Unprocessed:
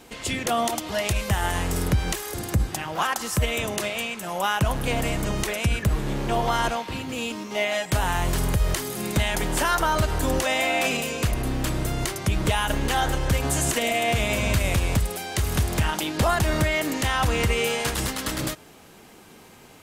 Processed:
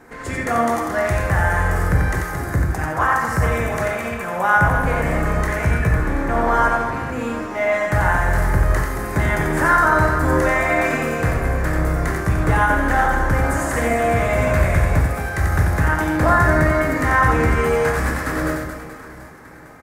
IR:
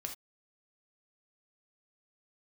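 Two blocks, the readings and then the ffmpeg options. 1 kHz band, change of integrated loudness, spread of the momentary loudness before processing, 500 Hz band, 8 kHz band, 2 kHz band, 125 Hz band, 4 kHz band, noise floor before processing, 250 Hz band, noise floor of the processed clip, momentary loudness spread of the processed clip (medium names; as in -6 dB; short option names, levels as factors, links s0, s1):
+7.5 dB, +6.0 dB, 5 LU, +6.5 dB, -5.0 dB, +8.0 dB, +6.0 dB, -9.5 dB, -49 dBFS, +5.5 dB, -36 dBFS, 8 LU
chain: -filter_complex "[0:a]highshelf=f=2300:t=q:w=3:g=-9.5,aecho=1:1:90|225|427.5|731.2|1187:0.631|0.398|0.251|0.158|0.1[s0];[1:a]atrim=start_sample=2205[s1];[s0][s1]afir=irnorm=-1:irlink=0,volume=1.68"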